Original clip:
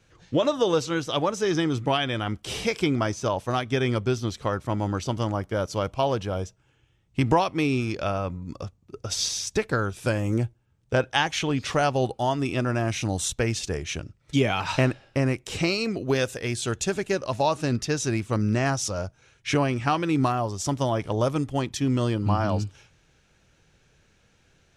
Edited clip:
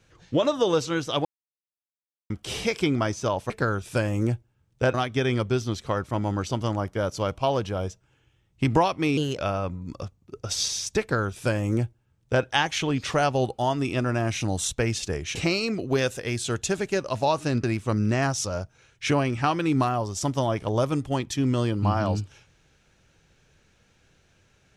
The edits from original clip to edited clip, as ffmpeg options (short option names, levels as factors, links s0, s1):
-filter_complex "[0:a]asplit=9[s0][s1][s2][s3][s4][s5][s6][s7][s8];[s0]atrim=end=1.25,asetpts=PTS-STARTPTS,afade=t=out:st=1.246:d=0.004:c=hsin[s9];[s1]atrim=start=1.25:end=2.3,asetpts=PTS-STARTPTS,volume=0[s10];[s2]atrim=start=2.3:end=3.502,asetpts=PTS-STARTPTS,afade=t=in:d=0.004:c=hsin[s11];[s3]atrim=start=9.608:end=11.052[s12];[s4]atrim=start=3.498:end=7.734[s13];[s5]atrim=start=7.73:end=7.99,asetpts=PTS-STARTPTS,asetrate=53361,aresample=44100,atrim=end_sample=9476,asetpts=PTS-STARTPTS[s14];[s6]atrim=start=7.986:end=13.962[s15];[s7]atrim=start=15.528:end=17.812[s16];[s8]atrim=start=18.068[s17];[s9][s10][s11]concat=n=3:v=0:a=1[s18];[s18][s12]acrossfade=d=0.004:c1=hsin:c2=hsin[s19];[s19][s13]acrossfade=d=0.004:c1=hsin:c2=hsin[s20];[s20][s14]acrossfade=d=0.004:c1=hsin:c2=hsin[s21];[s21][s15]acrossfade=d=0.004:c1=hsin:c2=hsin[s22];[s22][s16]acrossfade=d=0.004:c1=hsin:c2=hsin[s23];[s23][s17]acrossfade=d=0.004:c1=hsin:c2=hsin"